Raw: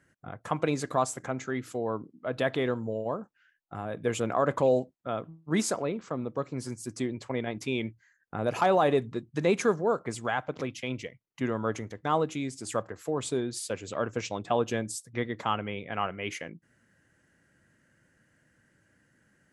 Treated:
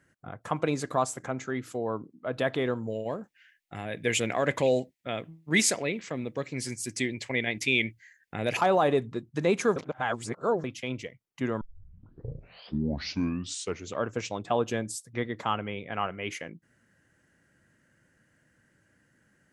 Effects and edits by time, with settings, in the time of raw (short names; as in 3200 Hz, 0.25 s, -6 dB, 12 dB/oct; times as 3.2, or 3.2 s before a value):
2.87–8.57 resonant high shelf 1600 Hz +7.5 dB, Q 3
9.76–10.64 reverse
11.61 tape start 2.42 s